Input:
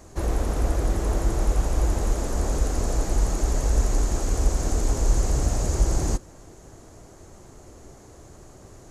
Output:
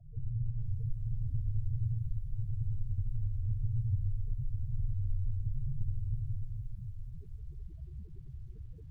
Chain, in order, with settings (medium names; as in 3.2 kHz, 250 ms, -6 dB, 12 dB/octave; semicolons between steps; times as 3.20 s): ring modulator 60 Hz; reverberation RT60 1.7 s, pre-delay 56 ms, DRR -1.5 dB; loudest bins only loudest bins 4; bass shelf 190 Hz +10 dB; compression 2.5:1, threshold -33 dBFS, peak gain reduction 18 dB; peaking EQ 4.6 kHz +7 dB 2.6 oct; bit-crushed delay 483 ms, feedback 35%, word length 10-bit, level -15 dB; trim -4.5 dB